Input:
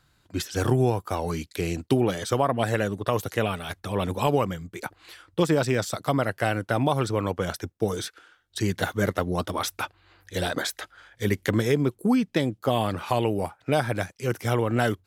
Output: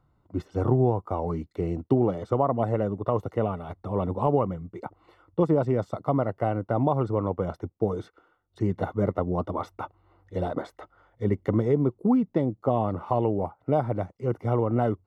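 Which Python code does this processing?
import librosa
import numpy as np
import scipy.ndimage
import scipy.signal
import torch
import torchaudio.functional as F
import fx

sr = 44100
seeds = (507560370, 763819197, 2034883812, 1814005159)

y = scipy.signal.savgol_filter(x, 65, 4, mode='constant')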